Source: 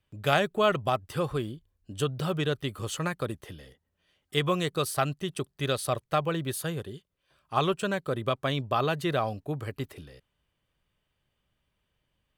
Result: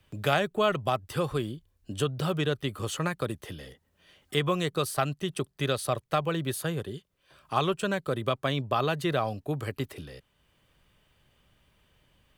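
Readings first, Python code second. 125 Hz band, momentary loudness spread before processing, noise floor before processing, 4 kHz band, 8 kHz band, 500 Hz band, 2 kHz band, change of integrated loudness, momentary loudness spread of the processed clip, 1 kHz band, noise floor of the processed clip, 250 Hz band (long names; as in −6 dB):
+0.5 dB, 14 LU, −79 dBFS, 0.0 dB, −0.5 dB, 0.0 dB, 0.0 dB, 0.0 dB, 12 LU, −0.5 dB, −71 dBFS, +0.5 dB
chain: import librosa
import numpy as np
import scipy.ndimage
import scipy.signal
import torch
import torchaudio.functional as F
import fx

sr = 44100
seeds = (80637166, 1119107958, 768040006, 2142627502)

y = fx.band_squash(x, sr, depth_pct=40)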